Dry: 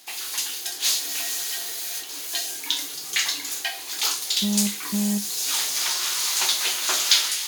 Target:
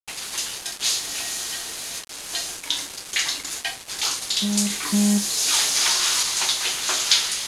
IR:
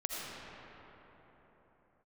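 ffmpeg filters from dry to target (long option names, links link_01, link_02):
-filter_complex "[0:a]asettb=1/sr,asplit=3[link_01][link_02][link_03];[link_01]atrim=end=4.704[link_04];[link_02]atrim=start=4.7:end=6.23,asetpts=PTS-STARTPTS,afade=type=in:duration=0.004:curve=qsin,afade=type=out:start_time=1.526:duration=0.004:curve=qsin,acontrast=27[link_05];[link_03]atrim=start=6.226[link_06];[link_04][link_05]acrossfade=duration=0.004:curve1=hsin:curve2=qsin[link_07];[link_07][link_06]acrossfade=duration=0.004:curve1=qsin:curve2=hsin,acrusher=bits=4:mix=0:aa=0.000001,lowpass=frequency=11000:width=0.5412,lowpass=frequency=11000:width=1.3066"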